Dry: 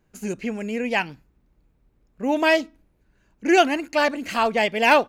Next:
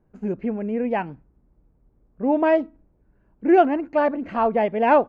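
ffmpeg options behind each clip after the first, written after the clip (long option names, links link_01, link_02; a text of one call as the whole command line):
ffmpeg -i in.wav -af "lowpass=1000,volume=2.5dB" out.wav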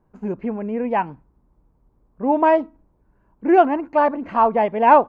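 ffmpeg -i in.wav -af "equalizer=frequency=1000:width_type=o:width=0.59:gain=9.5" out.wav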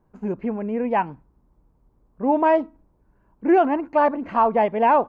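ffmpeg -i in.wav -af "alimiter=level_in=7.5dB:limit=-1dB:release=50:level=0:latency=1,volume=-8dB" out.wav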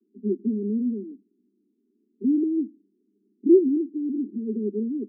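ffmpeg -i in.wav -af "asuperpass=centerf=290:order=20:qfactor=1.3,volume=2dB" out.wav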